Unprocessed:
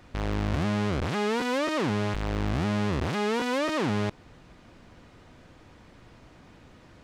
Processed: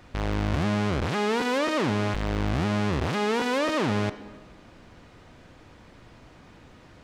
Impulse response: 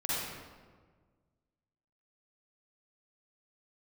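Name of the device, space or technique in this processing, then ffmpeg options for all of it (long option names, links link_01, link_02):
filtered reverb send: -filter_complex "[0:a]asplit=2[link_01][link_02];[link_02]highpass=frequency=220:width=0.5412,highpass=frequency=220:width=1.3066,lowpass=7800[link_03];[1:a]atrim=start_sample=2205[link_04];[link_03][link_04]afir=irnorm=-1:irlink=0,volume=-19dB[link_05];[link_01][link_05]amix=inputs=2:normalize=0,volume=1.5dB"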